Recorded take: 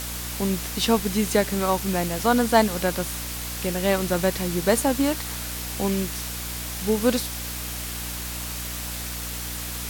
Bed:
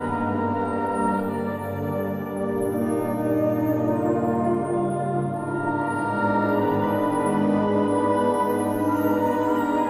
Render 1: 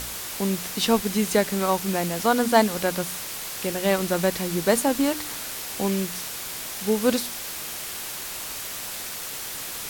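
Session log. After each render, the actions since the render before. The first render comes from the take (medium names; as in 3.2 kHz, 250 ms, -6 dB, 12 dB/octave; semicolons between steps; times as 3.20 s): de-hum 60 Hz, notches 5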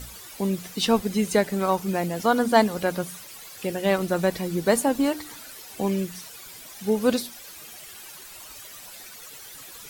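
noise reduction 13 dB, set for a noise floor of -34 dBFS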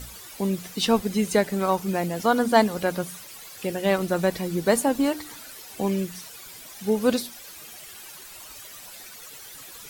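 no audible change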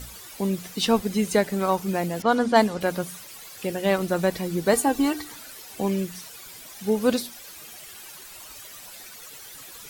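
2.22–2.81 s: level-controlled noise filter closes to 2.2 kHz, open at -12.5 dBFS; 4.73–5.25 s: comb 2.6 ms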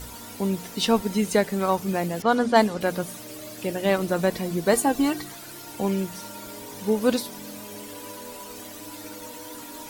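add bed -20 dB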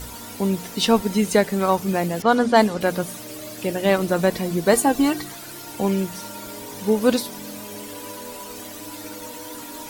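trim +3.5 dB; peak limiter -3 dBFS, peak gain reduction 1.5 dB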